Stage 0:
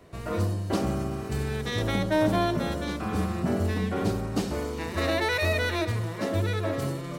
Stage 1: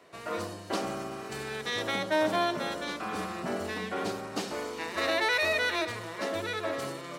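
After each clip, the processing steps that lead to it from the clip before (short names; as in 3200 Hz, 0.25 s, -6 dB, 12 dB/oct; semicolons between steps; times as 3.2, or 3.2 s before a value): weighting filter A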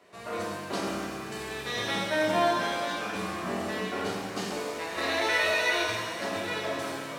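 shimmer reverb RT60 1.4 s, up +7 st, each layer -8 dB, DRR -2 dB; gain -3 dB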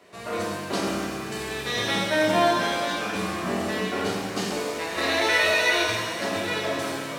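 bell 1000 Hz -2.5 dB 2 oct; gain +6 dB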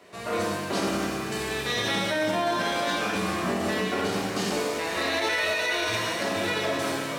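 limiter -19 dBFS, peak gain reduction 10 dB; gain +1.5 dB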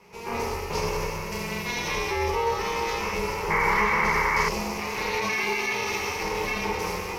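ring modulator 230 Hz; painted sound noise, 3.5–4.49, 790–2300 Hz -26 dBFS; ripple EQ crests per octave 0.81, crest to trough 12 dB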